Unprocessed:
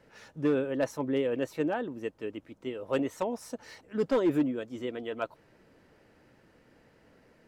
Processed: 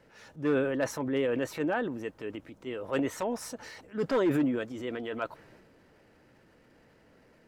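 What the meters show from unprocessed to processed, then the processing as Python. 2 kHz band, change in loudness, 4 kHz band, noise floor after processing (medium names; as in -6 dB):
+4.0 dB, 0.0 dB, +1.5 dB, -62 dBFS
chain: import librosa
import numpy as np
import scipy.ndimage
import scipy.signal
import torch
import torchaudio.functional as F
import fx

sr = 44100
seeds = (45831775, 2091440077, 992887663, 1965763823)

y = fx.dynamic_eq(x, sr, hz=1600.0, q=1.2, threshold_db=-51.0, ratio=4.0, max_db=5)
y = fx.transient(y, sr, attack_db=-4, sustain_db=6)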